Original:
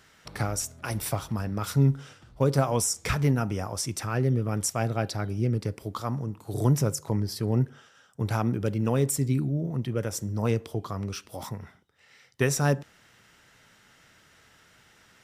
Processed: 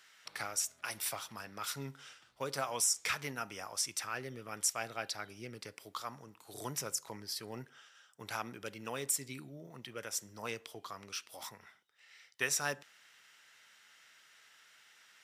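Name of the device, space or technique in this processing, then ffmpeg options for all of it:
filter by subtraction: -filter_complex "[0:a]asplit=2[link_01][link_02];[link_02]lowpass=2400,volume=-1[link_03];[link_01][link_03]amix=inputs=2:normalize=0,volume=-3.5dB"

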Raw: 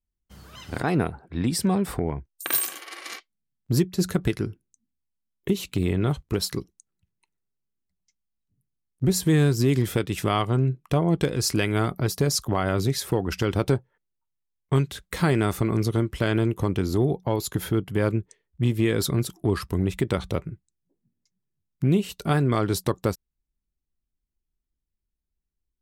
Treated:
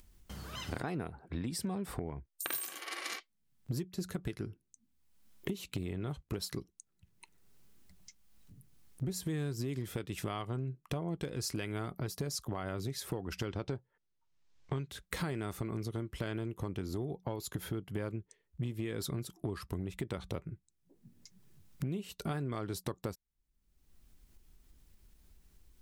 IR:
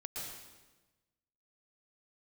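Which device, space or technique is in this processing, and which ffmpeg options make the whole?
upward and downward compression: -filter_complex "[0:a]acompressor=mode=upward:threshold=-43dB:ratio=2.5,acompressor=threshold=-37dB:ratio=5,asettb=1/sr,asplit=3[link_01][link_02][link_03];[link_01]atrim=end=13.504[link_04];[link_02]atrim=start=13.5:end=14.9,asetpts=PTS-STARTPTS,afade=type=in:duration=0.004:curve=qsin,afade=type=out:start_time=1.396:duration=0.004:curve=qsin,lowpass=frequency=6600:width=0.5412,lowpass=frequency=6600:width=1.3066[link_05];[link_03]atrim=start=14.896[link_06];[link_04][link_05]acrossfade=duration=0.004:curve1=hsin:curve2=qsin[link_07];[link_07][link_06]acrossfade=duration=0.004:curve1=qsin:curve2=hsin,volume=1dB"

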